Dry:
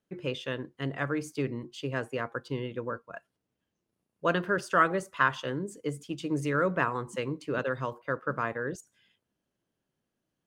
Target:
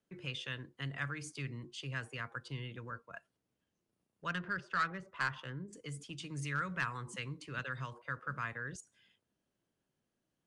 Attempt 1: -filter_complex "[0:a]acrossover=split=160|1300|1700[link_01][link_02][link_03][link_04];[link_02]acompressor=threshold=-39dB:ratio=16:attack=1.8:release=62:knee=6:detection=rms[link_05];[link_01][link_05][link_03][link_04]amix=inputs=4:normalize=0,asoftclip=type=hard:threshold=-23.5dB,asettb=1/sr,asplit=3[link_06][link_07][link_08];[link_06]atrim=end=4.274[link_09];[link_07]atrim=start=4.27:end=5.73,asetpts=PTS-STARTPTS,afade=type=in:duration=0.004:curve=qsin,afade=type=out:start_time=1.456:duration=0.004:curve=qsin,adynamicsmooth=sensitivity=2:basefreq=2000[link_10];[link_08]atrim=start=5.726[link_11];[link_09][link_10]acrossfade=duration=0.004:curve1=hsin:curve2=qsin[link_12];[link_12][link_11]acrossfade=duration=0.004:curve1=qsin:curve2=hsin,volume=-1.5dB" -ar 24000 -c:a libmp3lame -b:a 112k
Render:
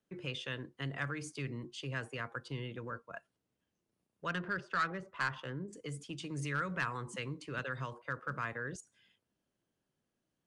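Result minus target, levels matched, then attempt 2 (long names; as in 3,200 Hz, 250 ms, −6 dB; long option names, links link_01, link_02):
downward compressor: peak gain reduction −7.5 dB
-filter_complex "[0:a]acrossover=split=160|1300|1700[link_01][link_02][link_03][link_04];[link_02]acompressor=threshold=-47dB:ratio=16:attack=1.8:release=62:knee=6:detection=rms[link_05];[link_01][link_05][link_03][link_04]amix=inputs=4:normalize=0,asoftclip=type=hard:threshold=-23.5dB,asettb=1/sr,asplit=3[link_06][link_07][link_08];[link_06]atrim=end=4.274[link_09];[link_07]atrim=start=4.27:end=5.73,asetpts=PTS-STARTPTS,afade=type=in:duration=0.004:curve=qsin,afade=type=out:start_time=1.456:duration=0.004:curve=qsin,adynamicsmooth=sensitivity=2:basefreq=2000[link_10];[link_08]atrim=start=5.726[link_11];[link_09][link_10]acrossfade=duration=0.004:curve1=hsin:curve2=qsin[link_12];[link_12][link_11]acrossfade=duration=0.004:curve1=qsin:curve2=hsin,volume=-1.5dB" -ar 24000 -c:a libmp3lame -b:a 112k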